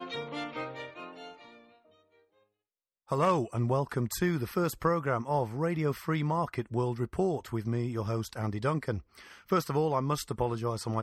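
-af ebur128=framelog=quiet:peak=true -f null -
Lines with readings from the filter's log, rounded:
Integrated loudness:
  I:         -31.3 LUFS
  Threshold: -42.2 LUFS
Loudness range:
  LRA:         4.9 LU
  Threshold: -51.9 LUFS
  LRA low:   -35.1 LUFS
  LRA high:  -30.3 LUFS
True peak:
  Peak:      -15.2 dBFS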